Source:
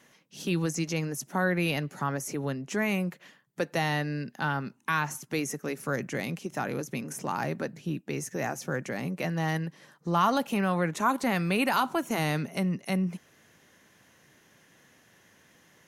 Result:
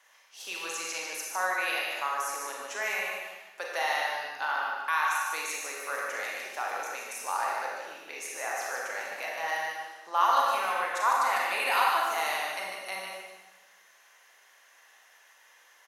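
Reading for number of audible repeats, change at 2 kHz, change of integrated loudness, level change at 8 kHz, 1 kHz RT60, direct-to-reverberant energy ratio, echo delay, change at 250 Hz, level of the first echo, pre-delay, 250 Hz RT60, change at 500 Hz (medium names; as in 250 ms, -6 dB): 1, +3.0 dB, 0.0 dB, +2.0 dB, 1.1 s, -3.5 dB, 150 ms, -24.5 dB, -5.0 dB, 31 ms, 1.3 s, -4.5 dB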